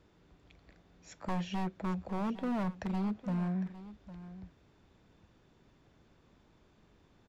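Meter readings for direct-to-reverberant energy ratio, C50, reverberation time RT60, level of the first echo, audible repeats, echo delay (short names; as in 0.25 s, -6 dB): none, none, none, -15.0 dB, 1, 0.806 s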